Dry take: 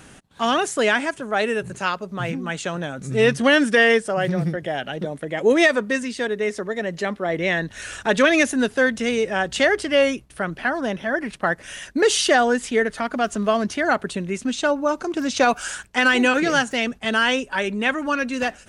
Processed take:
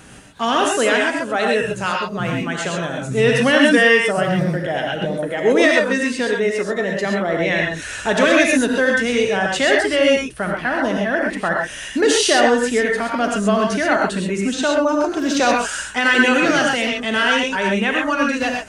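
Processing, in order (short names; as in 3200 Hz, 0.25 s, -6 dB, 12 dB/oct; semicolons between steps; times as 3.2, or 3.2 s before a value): in parallel at -2 dB: limiter -14.5 dBFS, peak gain reduction 9 dB; on the sum: non-linear reverb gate 0.15 s rising, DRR -0.5 dB; gain -3 dB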